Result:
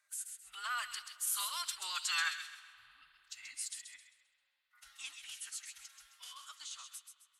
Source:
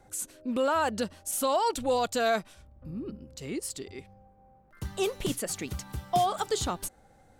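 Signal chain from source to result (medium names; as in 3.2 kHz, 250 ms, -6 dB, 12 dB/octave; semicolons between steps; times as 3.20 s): octave divider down 2 oct, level -5 dB; Doppler pass-by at 2.25 s, 18 m/s, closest 20 m; inverse Chebyshev high-pass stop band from 690 Hz, stop band 40 dB; band-stop 2.3 kHz, Q 18; formant-preserving pitch shift -5.5 st; on a send: feedback echo behind a high-pass 132 ms, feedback 34%, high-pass 2.1 kHz, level -6.5 dB; on the sum: spring tank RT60 3.2 s, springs 49 ms, chirp 35 ms, DRR 16 dB; trim +1 dB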